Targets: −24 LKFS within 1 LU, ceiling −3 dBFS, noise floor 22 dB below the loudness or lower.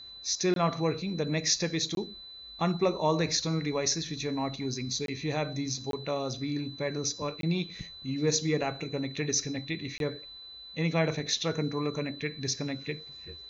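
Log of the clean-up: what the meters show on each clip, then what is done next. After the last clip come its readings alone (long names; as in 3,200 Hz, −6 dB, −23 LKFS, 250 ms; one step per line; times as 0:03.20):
number of dropouts 6; longest dropout 22 ms; interfering tone 4,000 Hz; level of the tone −44 dBFS; integrated loudness −31.0 LKFS; sample peak −13.5 dBFS; target loudness −24.0 LKFS
→ repair the gap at 0:00.54/0:01.95/0:05.06/0:05.91/0:07.41/0:09.98, 22 ms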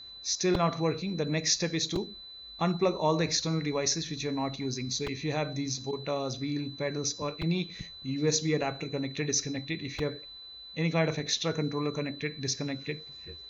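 number of dropouts 0; interfering tone 4,000 Hz; level of the tone −44 dBFS
→ notch filter 4,000 Hz, Q 30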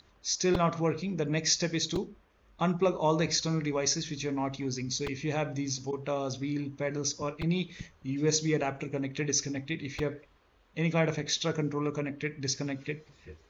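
interfering tone none found; integrated loudness −31.0 LKFS; sample peak −13.5 dBFS; target loudness −24.0 LKFS
→ level +7 dB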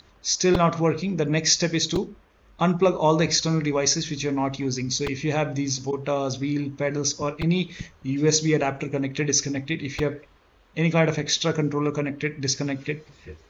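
integrated loudness −24.0 LKFS; sample peak −6.5 dBFS; background noise floor −57 dBFS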